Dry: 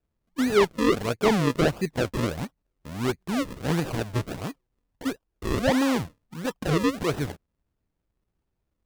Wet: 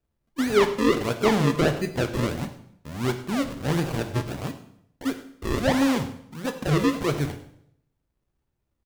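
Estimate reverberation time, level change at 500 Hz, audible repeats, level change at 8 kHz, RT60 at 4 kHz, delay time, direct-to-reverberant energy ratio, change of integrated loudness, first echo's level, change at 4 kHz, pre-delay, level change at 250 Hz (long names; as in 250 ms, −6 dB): 0.70 s, +0.5 dB, 1, +1.0 dB, 0.65 s, 101 ms, 6.5 dB, +1.0 dB, −18.0 dB, +1.0 dB, 4 ms, +1.0 dB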